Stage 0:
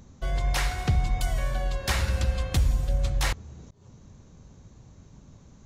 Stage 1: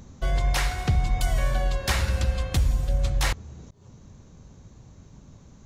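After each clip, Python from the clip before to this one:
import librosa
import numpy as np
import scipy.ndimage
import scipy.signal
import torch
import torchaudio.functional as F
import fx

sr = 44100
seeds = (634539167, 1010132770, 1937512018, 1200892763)

y = fx.rider(x, sr, range_db=3, speed_s=0.5)
y = y * 10.0 ** (2.0 / 20.0)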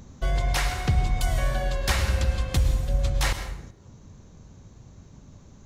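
y = fx.rev_plate(x, sr, seeds[0], rt60_s=0.72, hf_ratio=0.75, predelay_ms=95, drr_db=9.0)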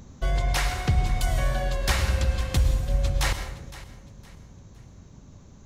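y = fx.echo_feedback(x, sr, ms=512, feedback_pct=34, wet_db=-17)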